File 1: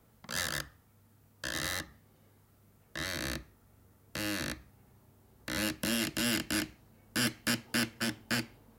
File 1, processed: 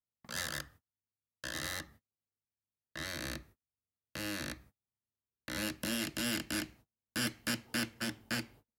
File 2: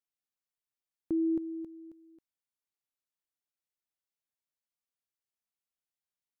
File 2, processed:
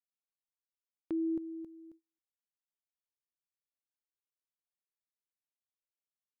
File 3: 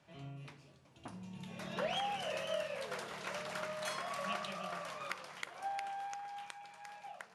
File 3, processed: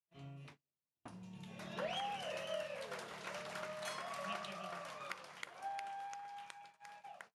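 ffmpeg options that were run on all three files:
-af "agate=range=-36dB:threshold=-53dB:ratio=16:detection=peak,volume=-4dB"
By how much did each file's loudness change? -4.0, -4.0, -4.0 LU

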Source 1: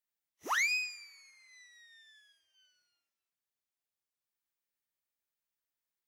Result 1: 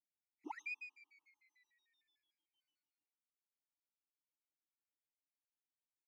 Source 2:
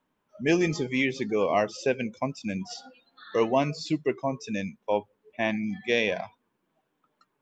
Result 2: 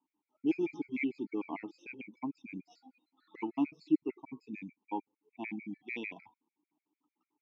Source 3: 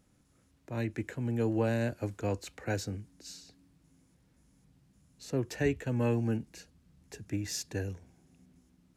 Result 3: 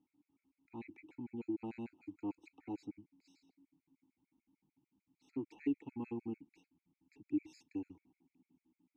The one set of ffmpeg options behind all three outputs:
-filter_complex "[0:a]asplit=3[a][b][c];[a]bandpass=f=300:t=q:w=8,volume=0dB[d];[b]bandpass=f=870:t=q:w=8,volume=-6dB[e];[c]bandpass=f=2.24k:t=q:w=8,volume=-9dB[f];[d][e][f]amix=inputs=3:normalize=0,afftfilt=real='re*gt(sin(2*PI*6.7*pts/sr)*(1-2*mod(floor(b*sr/1024/1300),2)),0)':imag='im*gt(sin(2*PI*6.7*pts/sr)*(1-2*mod(floor(b*sr/1024/1300),2)),0)':win_size=1024:overlap=0.75,volume=3.5dB"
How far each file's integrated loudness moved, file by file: -16.5, -10.0, -10.5 LU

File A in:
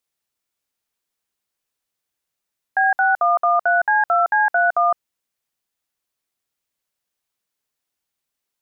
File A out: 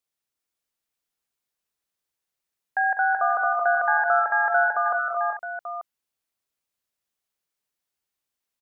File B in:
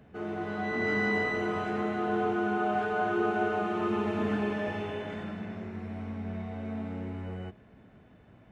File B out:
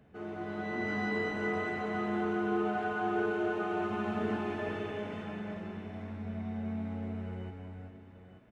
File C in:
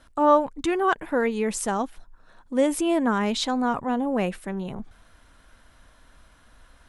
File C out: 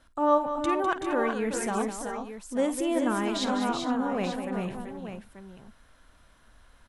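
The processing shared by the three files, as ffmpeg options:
-af "aecho=1:1:51|201|378|401|465|886:0.2|0.335|0.447|0.355|0.112|0.299,volume=-5.5dB"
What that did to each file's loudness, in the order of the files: -4.5, -3.5, -4.0 LU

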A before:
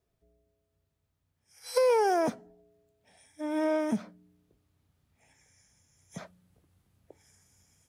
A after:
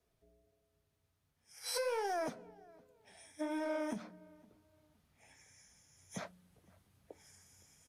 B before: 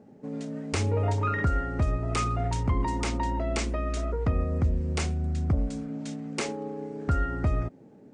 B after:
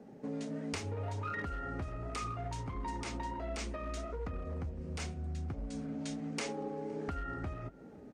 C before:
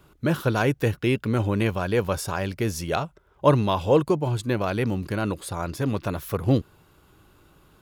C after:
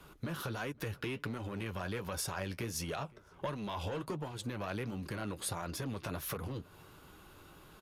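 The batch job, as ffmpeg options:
-filter_complex "[0:a]acrossover=split=250|1000|2300[a][b][c][d];[b]asoftclip=type=tanh:threshold=-24dB[e];[a][e][c][d]amix=inputs=4:normalize=0,alimiter=limit=-21dB:level=0:latency=1:release=83,asoftclip=type=hard:threshold=-23dB,acompressor=threshold=-35dB:ratio=10,bandreject=f=7.5k:w=17,flanger=delay=4:depth=7.2:regen=-49:speed=1.4:shape=sinusoidal,aresample=32000,aresample=44100,lowshelf=f=450:g=-4.5,asplit=2[f][g];[g]adelay=514,lowpass=f=2.1k:p=1,volume=-24dB,asplit=2[h][i];[i]adelay=514,lowpass=f=2.1k:p=1,volume=0.3[j];[f][h][j]amix=inputs=3:normalize=0,volume=6.5dB"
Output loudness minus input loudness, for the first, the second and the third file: -11.0, -11.0, -15.0 LU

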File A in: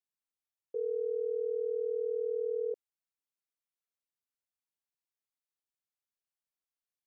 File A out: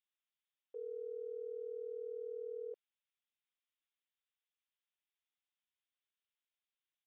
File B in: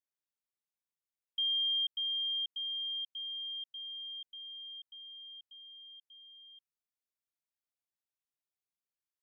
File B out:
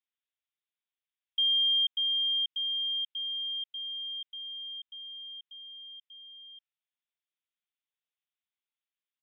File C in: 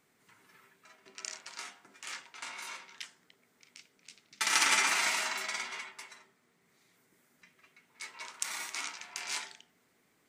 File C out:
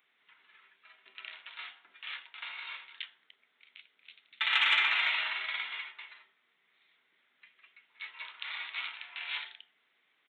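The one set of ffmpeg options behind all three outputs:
-af "aresample=8000,aresample=44100,acontrast=74,aderivative,volume=6dB"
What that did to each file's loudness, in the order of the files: -11.0, +6.0, +1.0 LU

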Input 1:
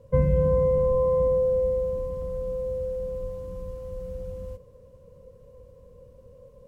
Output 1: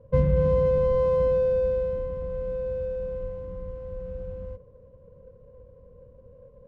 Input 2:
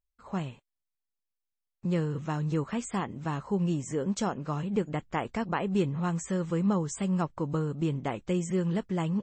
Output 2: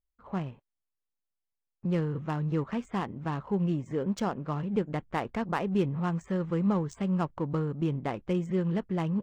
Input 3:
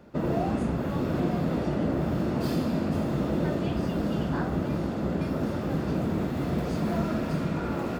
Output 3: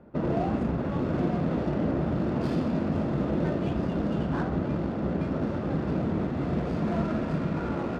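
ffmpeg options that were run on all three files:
-af "adynamicsmooth=sensitivity=7:basefreq=1.6k"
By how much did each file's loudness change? 0.0, 0.0, 0.0 LU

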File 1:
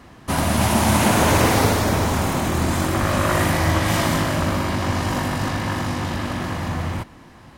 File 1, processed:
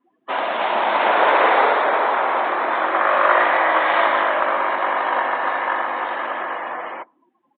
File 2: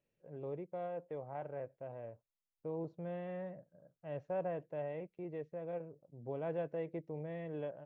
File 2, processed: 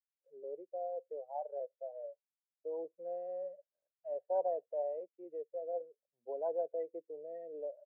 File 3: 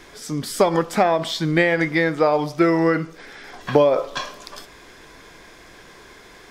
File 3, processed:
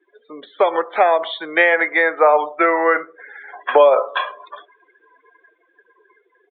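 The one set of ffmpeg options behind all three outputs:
-filter_complex "[0:a]afftdn=nr=33:nf=-36,aresample=8000,aresample=44100,acrossover=split=690|2600[a][b][c];[b]dynaudnorm=f=240:g=11:m=7dB[d];[a][d][c]amix=inputs=3:normalize=0,adynamicequalizer=threshold=0.0126:dfrequency=2900:dqfactor=1.8:tfrequency=2900:tqfactor=1.8:attack=5:release=100:ratio=0.375:range=3:mode=cutabove:tftype=bell,highpass=f=440:w=0.5412,highpass=f=440:w=1.3066,volume=2.5dB"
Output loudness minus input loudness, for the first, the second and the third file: +2.0, +2.0, +3.5 LU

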